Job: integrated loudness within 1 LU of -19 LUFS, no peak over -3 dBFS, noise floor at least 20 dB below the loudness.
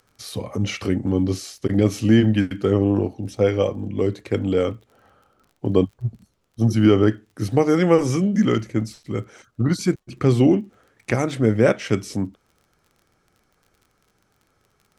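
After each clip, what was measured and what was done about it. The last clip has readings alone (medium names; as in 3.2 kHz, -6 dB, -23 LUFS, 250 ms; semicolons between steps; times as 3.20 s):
tick rate 29 per s; loudness -21.0 LUFS; peak level -3.0 dBFS; loudness target -19.0 LUFS
-> de-click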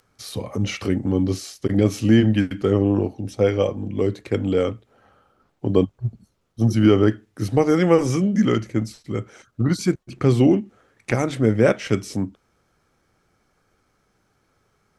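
tick rate 0.067 per s; loudness -21.0 LUFS; peak level -3.0 dBFS; loudness target -19.0 LUFS
-> trim +2 dB; peak limiter -3 dBFS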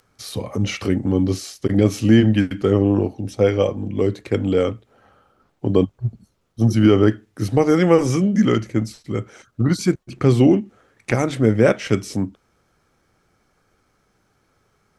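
loudness -19.0 LUFS; peak level -3.0 dBFS; noise floor -65 dBFS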